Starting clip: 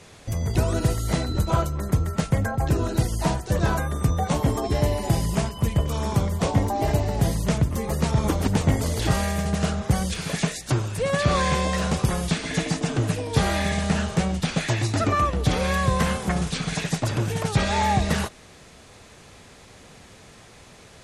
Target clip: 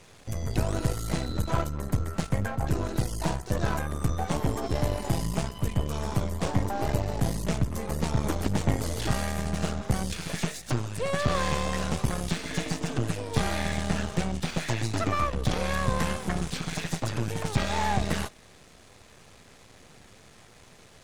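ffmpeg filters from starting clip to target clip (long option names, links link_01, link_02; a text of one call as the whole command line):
ffmpeg -i in.wav -af "aeval=exprs='if(lt(val(0),0),0.251*val(0),val(0))':channel_layout=same,volume=-2dB" out.wav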